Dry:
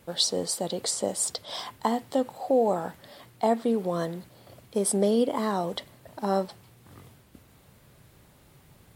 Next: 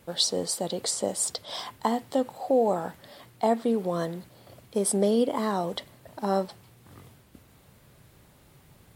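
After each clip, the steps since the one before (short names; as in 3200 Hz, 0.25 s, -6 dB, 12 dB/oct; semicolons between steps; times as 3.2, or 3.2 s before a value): nothing audible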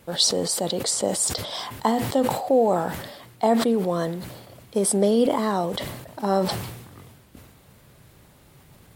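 sustainer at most 52 dB/s; gain +3.5 dB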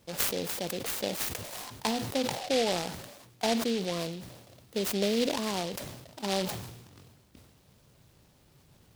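noise-modulated delay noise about 3400 Hz, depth 0.13 ms; gain -8.5 dB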